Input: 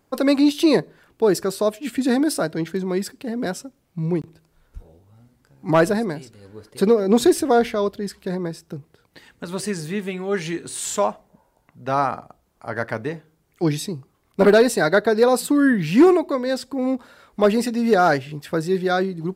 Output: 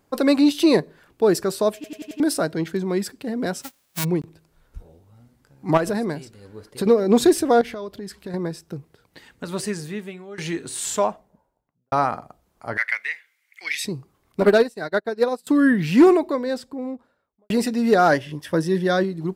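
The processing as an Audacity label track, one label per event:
1.750000	1.750000	stutter in place 0.09 s, 5 plays
3.610000	4.030000	formants flattened exponent 0.1
5.770000	6.860000	compression, threshold -19 dBFS
7.610000	8.340000	compression 4:1, threshold -30 dBFS
9.580000	10.380000	fade out, to -19 dB
10.900000	11.920000	studio fade out
12.770000	13.850000	resonant high-pass 2.1 kHz, resonance Q 8.6
14.400000	15.470000	upward expansion 2.5:1, over -33 dBFS
16.070000	17.500000	studio fade out
18.100000	19.040000	rippled EQ curve crests per octave 1.2, crest to trough 7 dB

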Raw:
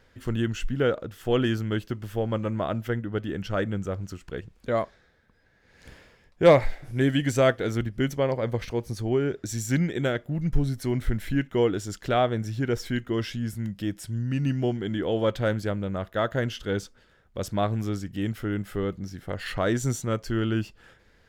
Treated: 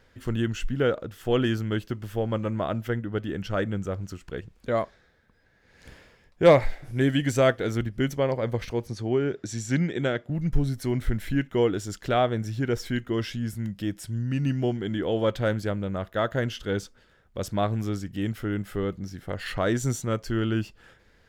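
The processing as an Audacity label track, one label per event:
8.870000	10.300000	band-pass 100–7000 Hz

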